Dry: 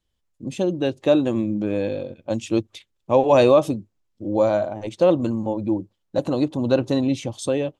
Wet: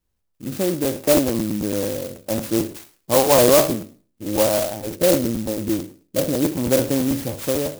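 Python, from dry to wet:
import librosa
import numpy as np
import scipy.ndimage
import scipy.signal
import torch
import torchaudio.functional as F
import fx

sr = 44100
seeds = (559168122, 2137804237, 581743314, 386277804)

y = fx.spec_trails(x, sr, decay_s=0.41)
y = fx.steep_lowpass(y, sr, hz=670.0, slope=36, at=(4.95, 6.52))
y = fx.buffer_crackle(y, sr, first_s=0.72, period_s=0.11, block=512, kind='repeat')
y = fx.clock_jitter(y, sr, seeds[0], jitter_ms=0.12)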